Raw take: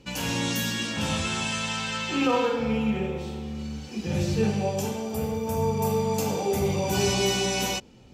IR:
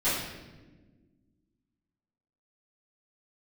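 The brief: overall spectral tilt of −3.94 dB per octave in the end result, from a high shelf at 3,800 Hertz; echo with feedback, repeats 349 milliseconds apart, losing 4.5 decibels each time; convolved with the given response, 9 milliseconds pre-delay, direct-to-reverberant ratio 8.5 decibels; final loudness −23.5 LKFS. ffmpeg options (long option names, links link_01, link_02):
-filter_complex "[0:a]highshelf=frequency=3800:gain=8,aecho=1:1:349|698|1047|1396|1745|2094|2443|2792|3141:0.596|0.357|0.214|0.129|0.0772|0.0463|0.0278|0.0167|0.01,asplit=2[link_01][link_02];[1:a]atrim=start_sample=2205,adelay=9[link_03];[link_02][link_03]afir=irnorm=-1:irlink=0,volume=-20dB[link_04];[link_01][link_04]amix=inputs=2:normalize=0,volume=-1.5dB"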